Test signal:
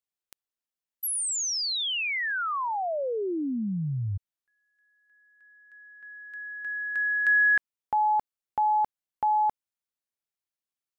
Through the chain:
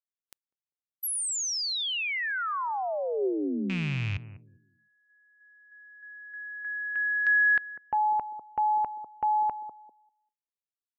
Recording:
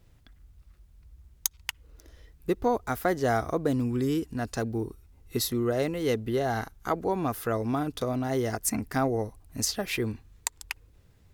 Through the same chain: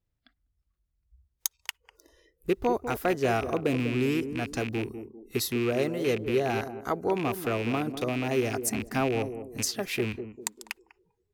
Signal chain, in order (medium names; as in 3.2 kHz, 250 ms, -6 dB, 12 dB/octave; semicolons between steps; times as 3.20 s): rattle on loud lows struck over -33 dBFS, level -23 dBFS; dynamic bell 390 Hz, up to +5 dB, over -42 dBFS, Q 6.6; on a send: band-passed feedback delay 198 ms, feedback 42%, band-pass 320 Hz, level -8 dB; on the sum: spectral noise reduction 21 dB; trim -1.5 dB